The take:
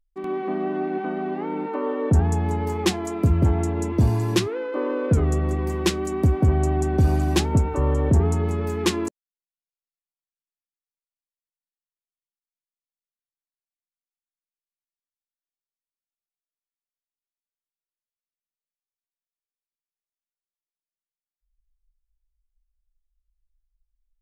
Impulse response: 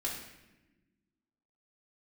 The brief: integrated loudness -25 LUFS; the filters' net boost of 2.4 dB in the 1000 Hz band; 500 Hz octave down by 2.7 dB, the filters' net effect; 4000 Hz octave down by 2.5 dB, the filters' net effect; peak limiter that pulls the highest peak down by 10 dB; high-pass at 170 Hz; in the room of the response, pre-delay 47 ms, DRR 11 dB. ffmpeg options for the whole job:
-filter_complex "[0:a]highpass=170,equalizer=f=500:t=o:g=-4.5,equalizer=f=1k:t=o:g=5,equalizer=f=4k:t=o:g=-3.5,alimiter=limit=-18dB:level=0:latency=1,asplit=2[a][b];[1:a]atrim=start_sample=2205,adelay=47[c];[b][c]afir=irnorm=-1:irlink=0,volume=-14dB[d];[a][d]amix=inputs=2:normalize=0,volume=3dB"

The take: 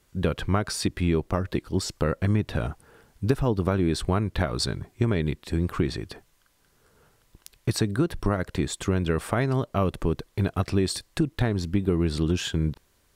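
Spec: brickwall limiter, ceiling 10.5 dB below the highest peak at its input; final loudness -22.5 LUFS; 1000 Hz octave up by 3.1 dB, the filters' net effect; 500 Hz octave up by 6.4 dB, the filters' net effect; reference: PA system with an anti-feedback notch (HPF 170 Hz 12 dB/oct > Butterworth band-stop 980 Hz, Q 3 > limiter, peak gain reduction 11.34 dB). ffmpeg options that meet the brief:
-af "equalizer=f=500:t=o:g=7.5,equalizer=f=1k:t=o:g=5,alimiter=limit=-13.5dB:level=0:latency=1,highpass=170,asuperstop=centerf=980:order=8:qfactor=3,volume=11.5dB,alimiter=limit=-11.5dB:level=0:latency=1"

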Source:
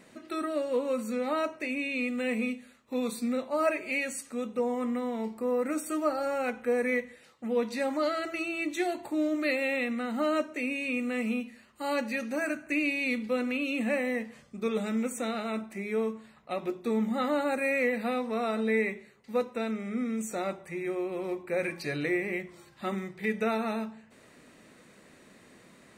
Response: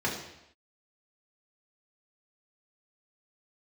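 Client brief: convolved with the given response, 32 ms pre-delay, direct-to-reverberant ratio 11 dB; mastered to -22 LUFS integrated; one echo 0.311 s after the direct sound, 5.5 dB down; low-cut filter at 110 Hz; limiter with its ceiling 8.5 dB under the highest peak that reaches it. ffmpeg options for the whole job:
-filter_complex "[0:a]highpass=110,alimiter=limit=-23.5dB:level=0:latency=1,aecho=1:1:311:0.531,asplit=2[a][b];[1:a]atrim=start_sample=2205,adelay=32[c];[b][c]afir=irnorm=-1:irlink=0,volume=-20.5dB[d];[a][d]amix=inputs=2:normalize=0,volume=9.5dB"

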